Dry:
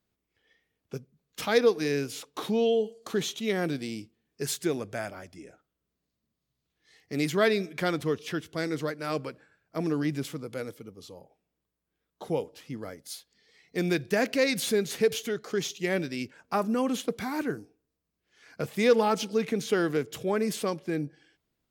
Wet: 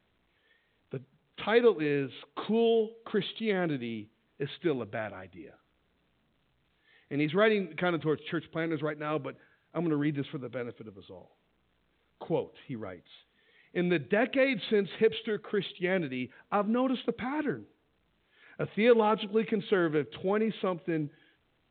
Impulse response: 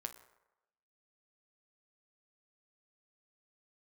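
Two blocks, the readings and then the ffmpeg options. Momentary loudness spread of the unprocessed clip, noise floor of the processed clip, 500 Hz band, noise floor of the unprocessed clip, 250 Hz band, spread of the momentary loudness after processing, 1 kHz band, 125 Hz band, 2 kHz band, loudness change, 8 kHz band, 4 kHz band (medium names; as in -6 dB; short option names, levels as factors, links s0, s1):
16 LU, -72 dBFS, -1.0 dB, -84 dBFS, -1.0 dB, 15 LU, -1.0 dB, -1.0 dB, -1.0 dB, -1.0 dB, under -40 dB, -4.0 dB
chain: -af "volume=0.891" -ar 8000 -c:a pcm_alaw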